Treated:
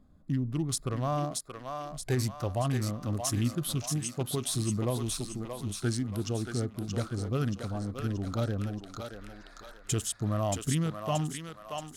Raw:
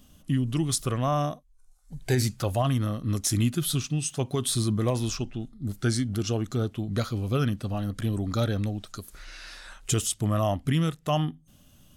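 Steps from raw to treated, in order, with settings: local Wiener filter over 15 samples; thinning echo 628 ms, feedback 51%, high-pass 670 Hz, level -3 dB; trim -4.5 dB

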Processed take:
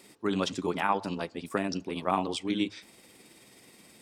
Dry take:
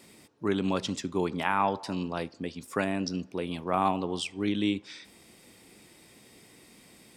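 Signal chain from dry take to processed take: bass shelf 150 Hz -5.5 dB; hum notches 50/100 Hz; granular stretch 0.56×, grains 107 ms; trim +1.5 dB

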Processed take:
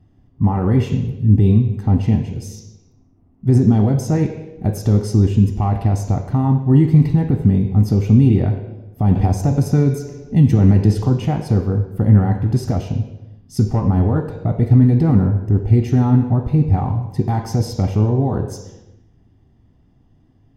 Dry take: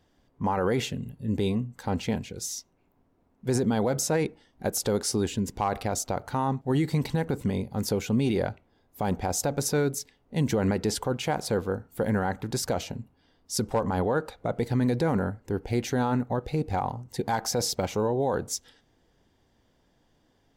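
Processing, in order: fifteen-band graphic EQ 100 Hz +7 dB, 2.5 kHz +9 dB, 6.3 kHz +6 dB; reverberation RT60 1.1 s, pre-delay 3 ms, DRR 4.5 dB; 9.15–11.25 s: three bands compressed up and down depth 40%; trim -3.5 dB

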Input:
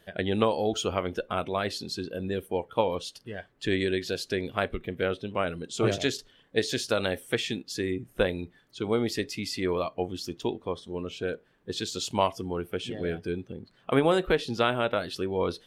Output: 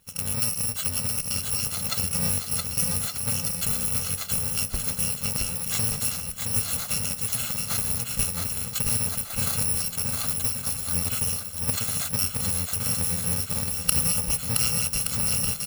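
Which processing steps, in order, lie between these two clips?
bit-reversed sample order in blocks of 128 samples; recorder AGC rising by 39 dB/s; bass shelf 150 Hz +4 dB; on a send: bouncing-ball echo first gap 670 ms, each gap 0.75×, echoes 5; on the sum: trim -2.5 dB

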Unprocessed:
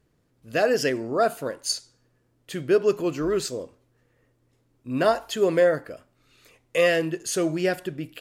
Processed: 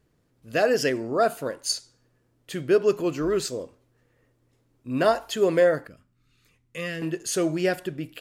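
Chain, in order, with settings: 5.87–7.02 s: FFT filter 190 Hz 0 dB, 630 Hz -19 dB, 1.2 kHz -9 dB

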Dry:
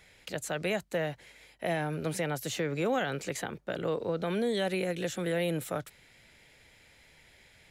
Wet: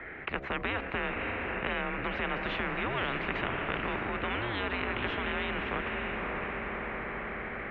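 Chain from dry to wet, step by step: mistuned SSB -120 Hz 160–2200 Hz; de-hum 67.95 Hz, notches 11; level rider gain up to 6 dB; echo that smears into a reverb 573 ms, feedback 43%, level -9 dB; dynamic bell 590 Hz, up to -5 dB, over -38 dBFS, Q 1.5; spectrum-flattening compressor 4:1

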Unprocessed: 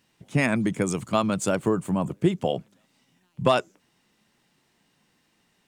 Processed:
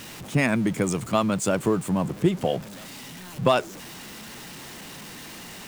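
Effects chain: jump at every zero crossing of -35 dBFS

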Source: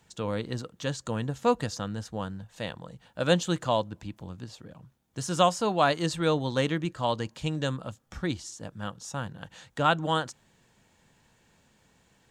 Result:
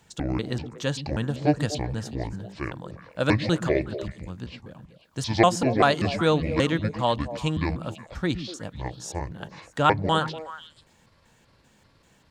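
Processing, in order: pitch shift switched off and on -8.5 st, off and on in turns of 194 ms; repeats whose band climbs or falls 122 ms, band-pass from 190 Hz, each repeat 1.4 oct, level -6 dB; trim +4 dB

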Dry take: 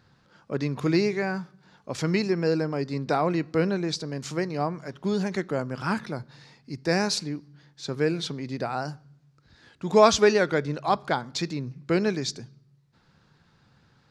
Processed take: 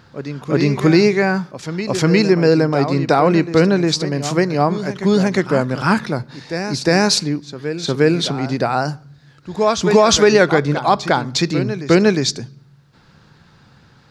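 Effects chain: reverse echo 357 ms -11 dB; loudness maximiser +12.5 dB; trim -1 dB

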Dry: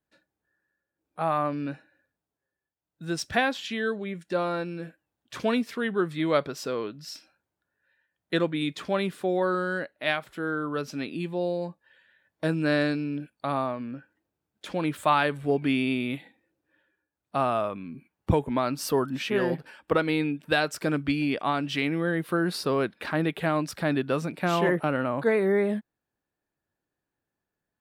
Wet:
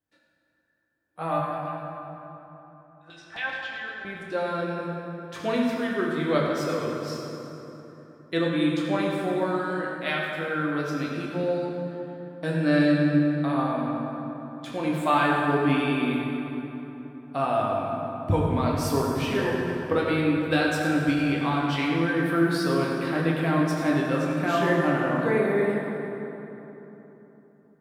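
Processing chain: 1.39–4.05 s: LFO band-pass saw down 7.6 Hz 800–4100 Hz; reverberation RT60 3.5 s, pre-delay 5 ms, DRR -4 dB; trim -4 dB

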